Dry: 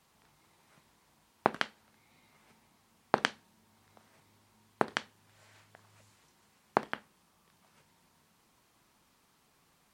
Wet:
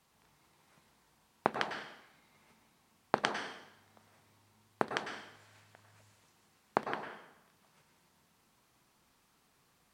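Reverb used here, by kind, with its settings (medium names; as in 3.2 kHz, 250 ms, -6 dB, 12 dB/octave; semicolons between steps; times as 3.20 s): plate-style reverb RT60 0.86 s, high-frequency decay 0.95×, pre-delay 90 ms, DRR 4.5 dB; trim -3 dB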